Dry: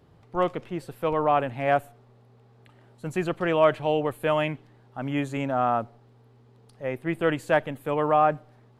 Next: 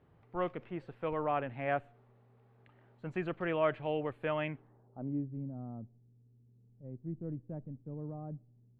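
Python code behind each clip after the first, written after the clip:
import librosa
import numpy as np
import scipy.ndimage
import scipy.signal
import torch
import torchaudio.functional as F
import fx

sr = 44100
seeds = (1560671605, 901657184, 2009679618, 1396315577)

y = fx.filter_sweep_lowpass(x, sr, from_hz=2300.0, to_hz=200.0, start_s=4.46, end_s=5.29, q=1.1)
y = fx.dynamic_eq(y, sr, hz=890.0, q=0.97, threshold_db=-33.0, ratio=4.0, max_db=-4)
y = y * 10.0 ** (-8.5 / 20.0)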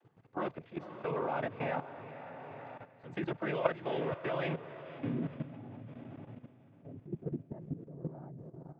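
y = fx.noise_vocoder(x, sr, seeds[0], bands=16)
y = fx.echo_diffused(y, sr, ms=508, feedback_pct=46, wet_db=-9.5)
y = fx.level_steps(y, sr, step_db=13)
y = y * 10.0 ** (5.0 / 20.0)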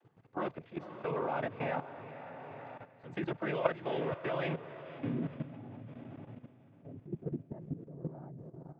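y = x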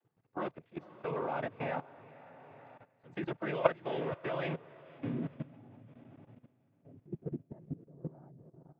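y = fx.upward_expand(x, sr, threshold_db=-55.0, expansion=1.5)
y = y * 10.0 ** (3.5 / 20.0)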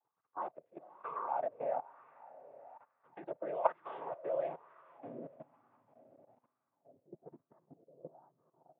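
y = fx.wah_lfo(x, sr, hz=1.1, low_hz=550.0, high_hz=1200.0, q=4.9)
y = y * 10.0 ** (6.0 / 20.0)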